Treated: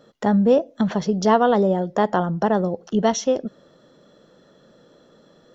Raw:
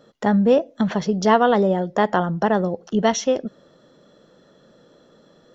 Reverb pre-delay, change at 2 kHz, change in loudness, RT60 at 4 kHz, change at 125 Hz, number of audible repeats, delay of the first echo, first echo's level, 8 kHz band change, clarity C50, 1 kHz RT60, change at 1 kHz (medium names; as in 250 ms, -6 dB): no reverb, -4.0 dB, -0.5 dB, no reverb, 0.0 dB, no echo, no echo, no echo, no reading, no reverb, no reverb, -1.0 dB